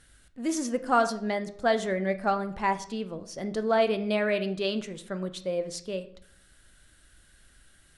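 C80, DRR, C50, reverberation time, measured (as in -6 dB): 17.0 dB, 9.0 dB, 13.5 dB, 0.60 s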